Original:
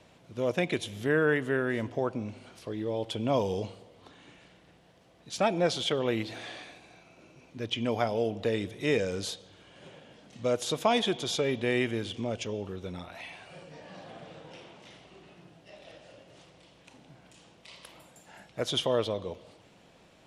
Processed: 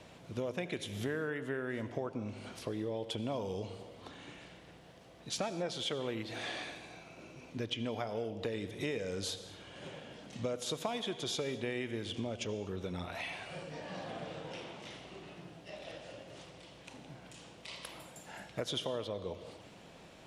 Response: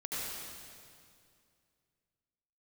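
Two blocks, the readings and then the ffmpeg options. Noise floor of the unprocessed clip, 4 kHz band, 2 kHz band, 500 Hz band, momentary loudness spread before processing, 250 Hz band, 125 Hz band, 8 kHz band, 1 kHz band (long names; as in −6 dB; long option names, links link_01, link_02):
−59 dBFS, −5.5 dB, −8.0 dB, −8.5 dB, 21 LU, −7.0 dB, −6.0 dB, −4.0 dB, −9.0 dB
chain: -filter_complex "[0:a]acompressor=threshold=-38dB:ratio=6,asplit=2[link_01][link_02];[1:a]atrim=start_sample=2205,afade=type=out:start_time=0.31:duration=0.01,atrim=end_sample=14112[link_03];[link_02][link_03]afir=irnorm=-1:irlink=0,volume=-14dB[link_04];[link_01][link_04]amix=inputs=2:normalize=0,volume=2.5dB"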